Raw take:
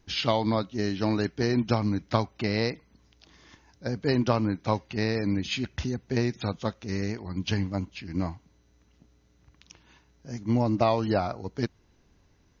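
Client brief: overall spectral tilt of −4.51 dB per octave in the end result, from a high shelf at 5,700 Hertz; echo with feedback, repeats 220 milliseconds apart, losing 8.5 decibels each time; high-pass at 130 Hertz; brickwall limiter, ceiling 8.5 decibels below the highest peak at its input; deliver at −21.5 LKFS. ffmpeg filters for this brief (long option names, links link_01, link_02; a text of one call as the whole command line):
ffmpeg -i in.wav -af "highpass=130,highshelf=frequency=5700:gain=8,alimiter=limit=-15.5dB:level=0:latency=1,aecho=1:1:220|440|660|880:0.376|0.143|0.0543|0.0206,volume=8dB" out.wav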